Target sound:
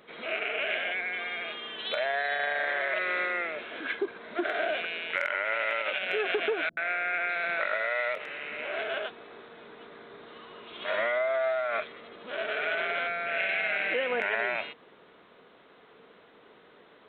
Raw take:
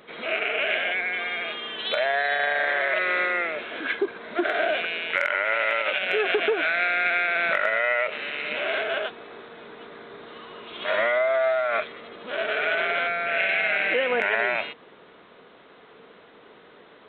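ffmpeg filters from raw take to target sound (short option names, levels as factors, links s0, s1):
-filter_complex "[0:a]asettb=1/sr,asplit=3[s0][s1][s2];[s0]atrim=end=6.694[s3];[s1]atrim=start=6.69:end=8.79,asetpts=PTS-STARTPTS,afade=t=in:d=0.004:c=qsin,afade=t=out:st=2.096:d=0.004:c=qsin,acrossover=split=230|3100[s4][s5][s6];[s5]adelay=80[s7];[s6]adelay=600[s8];[s4][s7][s8]amix=inputs=3:normalize=0,atrim=end_sample=92610[s9];[s2]atrim=start=8.786[s10];[s3][s9]acrossfade=d=0.004:c1=hsin:c2=qsin[s11];[s11][s10]acrossfade=d=0.004:c1=qsin:c2=hsin,volume=0.531"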